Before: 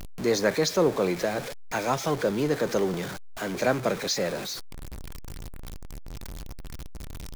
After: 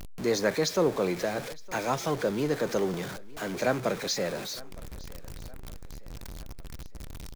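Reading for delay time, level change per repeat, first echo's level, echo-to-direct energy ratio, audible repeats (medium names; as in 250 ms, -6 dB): 913 ms, -6.0 dB, -22.5 dB, -21.5 dB, 3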